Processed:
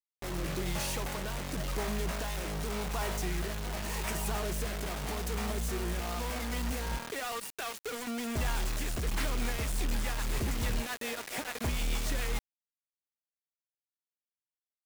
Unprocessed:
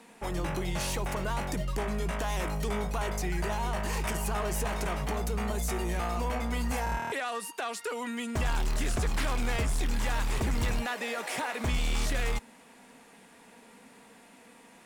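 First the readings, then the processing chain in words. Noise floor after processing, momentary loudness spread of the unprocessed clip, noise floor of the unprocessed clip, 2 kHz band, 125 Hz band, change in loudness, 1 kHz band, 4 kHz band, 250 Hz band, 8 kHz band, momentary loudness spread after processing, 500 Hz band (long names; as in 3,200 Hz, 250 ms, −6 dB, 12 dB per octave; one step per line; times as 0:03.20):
below −85 dBFS, 3 LU, −55 dBFS, −3.0 dB, −3.5 dB, −3.0 dB, −5.5 dB, −0.5 dB, −3.0 dB, −0.5 dB, 4 LU, −3.5 dB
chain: rotating-speaker cabinet horn 0.9 Hz, later 7 Hz, at 0:08.82
bit-depth reduction 6 bits, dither none
level −2 dB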